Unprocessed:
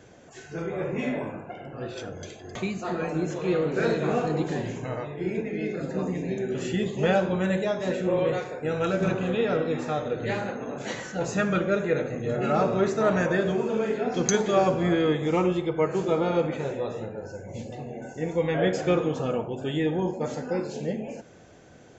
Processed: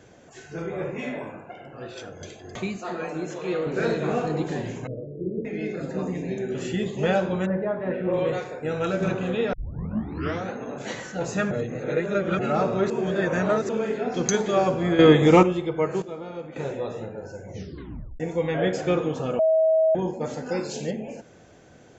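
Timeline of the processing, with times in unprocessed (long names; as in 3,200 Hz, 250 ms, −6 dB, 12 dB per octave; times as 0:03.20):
0:00.90–0:02.21: low-shelf EQ 460 Hz −5.5 dB
0:02.76–0:03.67: low-shelf EQ 190 Hz −11.5 dB
0:04.87–0:05.45: elliptic low-pass filter 560 Hz
0:07.45–0:08.12: low-pass filter 1,400 Hz → 2,800 Hz 24 dB per octave
0:09.53: tape start 0.99 s
0:11.51–0:12.39: reverse
0:12.90–0:13.69: reverse
0:14.99–0:15.43: clip gain +9.5 dB
0:16.02–0:16.56: clip gain −11.5 dB
0:17.50: tape stop 0.70 s
0:19.39–0:19.95: beep over 640 Hz −16 dBFS
0:20.46–0:20.91: high-shelf EQ 2,400 Hz +11 dB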